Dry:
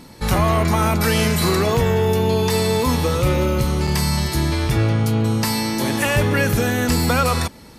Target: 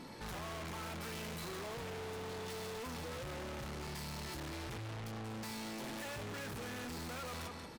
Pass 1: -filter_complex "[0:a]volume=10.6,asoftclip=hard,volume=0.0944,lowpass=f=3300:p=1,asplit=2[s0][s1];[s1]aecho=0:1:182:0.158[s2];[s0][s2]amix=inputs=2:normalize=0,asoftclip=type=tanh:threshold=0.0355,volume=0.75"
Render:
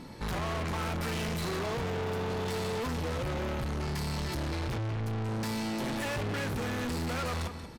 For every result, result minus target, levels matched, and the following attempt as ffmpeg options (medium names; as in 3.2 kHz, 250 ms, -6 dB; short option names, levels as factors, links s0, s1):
saturation: distortion -6 dB; 125 Hz band +3.0 dB
-filter_complex "[0:a]volume=10.6,asoftclip=hard,volume=0.0944,lowpass=f=3300:p=1,asplit=2[s0][s1];[s1]aecho=0:1:182:0.158[s2];[s0][s2]amix=inputs=2:normalize=0,asoftclip=type=tanh:threshold=0.00944,volume=0.75"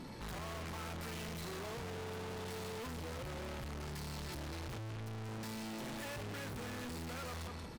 125 Hz band +2.0 dB
-filter_complex "[0:a]volume=10.6,asoftclip=hard,volume=0.0944,lowpass=f=3300:p=1,lowshelf=f=170:g=-10.5,asplit=2[s0][s1];[s1]aecho=0:1:182:0.158[s2];[s0][s2]amix=inputs=2:normalize=0,asoftclip=type=tanh:threshold=0.00944,volume=0.75"